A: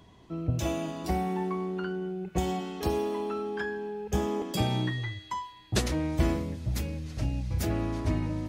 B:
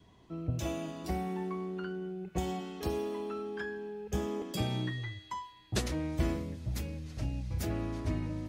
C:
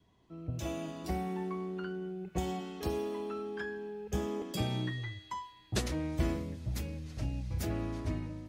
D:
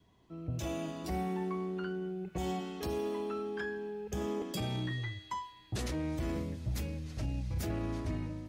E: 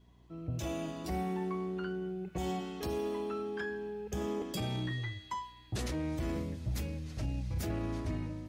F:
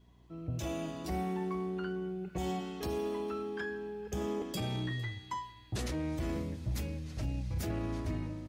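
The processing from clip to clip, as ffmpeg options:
-af "adynamicequalizer=threshold=0.00251:dfrequency=860:dqfactor=3.4:tfrequency=860:tqfactor=3.4:attack=5:release=100:ratio=0.375:range=2.5:mode=cutabove:tftype=bell,volume=0.562"
-af "dynaudnorm=f=160:g=7:m=2.37,volume=0.398"
-af "alimiter=level_in=1.78:limit=0.0631:level=0:latency=1:release=11,volume=0.562,volume=1.19"
-af "aeval=exprs='val(0)+0.000891*(sin(2*PI*60*n/s)+sin(2*PI*2*60*n/s)/2+sin(2*PI*3*60*n/s)/3+sin(2*PI*4*60*n/s)/4+sin(2*PI*5*60*n/s)/5)':c=same"
-af "aecho=1:1:455:0.0891"

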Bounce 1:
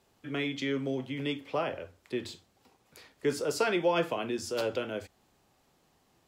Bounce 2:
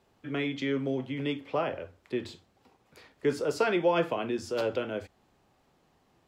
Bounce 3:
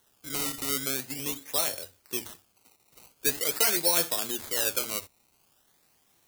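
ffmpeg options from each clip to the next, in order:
-af "highshelf=f=4500:g=-10.5,volume=1.26"
-af "acrusher=samples=18:mix=1:aa=0.000001:lfo=1:lforange=18:lforate=0.44,crystalizer=i=9:c=0,volume=0.398"

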